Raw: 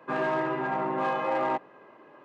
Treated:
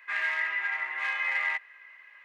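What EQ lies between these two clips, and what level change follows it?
high-pass with resonance 2,000 Hz, resonance Q 8.1
high-shelf EQ 4,000 Hz +7.5 dB
−2.0 dB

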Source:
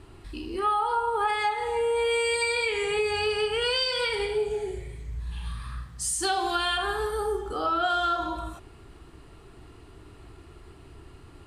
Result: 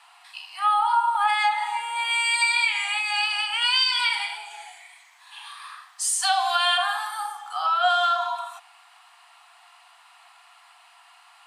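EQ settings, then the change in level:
Chebyshev high-pass with heavy ripple 700 Hz, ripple 3 dB
+7.0 dB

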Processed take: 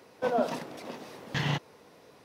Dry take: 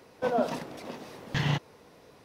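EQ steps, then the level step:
high-pass filter 140 Hz 6 dB per octave
0.0 dB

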